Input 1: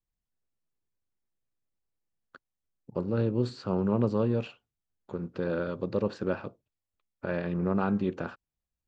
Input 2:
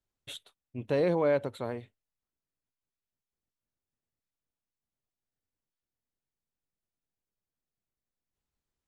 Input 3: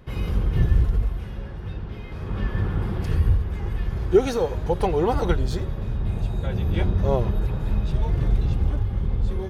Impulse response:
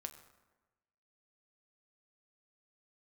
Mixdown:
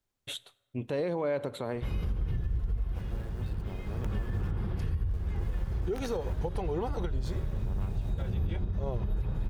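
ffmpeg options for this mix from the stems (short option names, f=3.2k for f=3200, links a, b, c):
-filter_complex "[0:a]acrusher=bits=4:dc=4:mix=0:aa=0.000001,volume=-16dB[a];[1:a]volume=1.5dB,asplit=2[b][c];[c]volume=-5dB[d];[2:a]lowshelf=f=140:g=5.5,acompressor=threshold=-21dB:ratio=3,adelay=1750,volume=-6dB[e];[3:a]atrim=start_sample=2205[f];[d][f]afir=irnorm=-1:irlink=0[g];[a][b][e][g]amix=inputs=4:normalize=0,alimiter=limit=-23dB:level=0:latency=1:release=75"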